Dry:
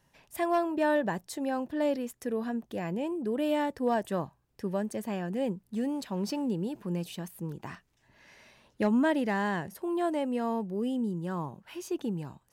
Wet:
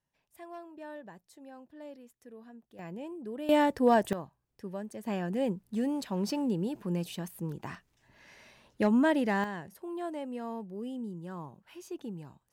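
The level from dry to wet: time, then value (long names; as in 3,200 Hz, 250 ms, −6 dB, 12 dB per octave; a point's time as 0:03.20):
−18 dB
from 0:02.79 −8.5 dB
from 0:03.49 +4.5 dB
from 0:04.13 −7.5 dB
from 0:05.06 +0.5 dB
from 0:09.44 −7.5 dB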